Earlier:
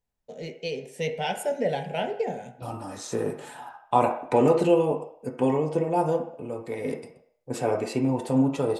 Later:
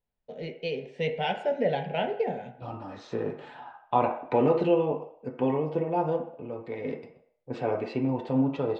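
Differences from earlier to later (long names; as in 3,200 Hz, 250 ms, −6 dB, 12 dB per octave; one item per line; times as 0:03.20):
second voice −3.0 dB
master: add low-pass filter 3,900 Hz 24 dB per octave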